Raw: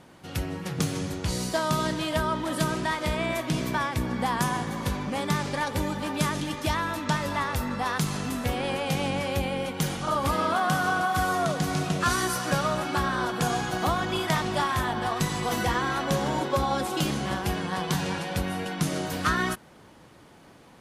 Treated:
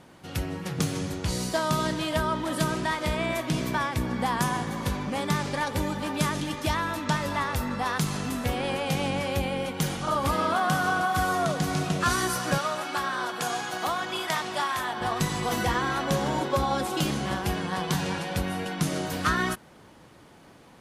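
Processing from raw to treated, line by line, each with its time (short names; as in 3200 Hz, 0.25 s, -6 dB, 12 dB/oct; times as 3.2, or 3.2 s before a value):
12.58–15.01 HPF 620 Hz 6 dB/oct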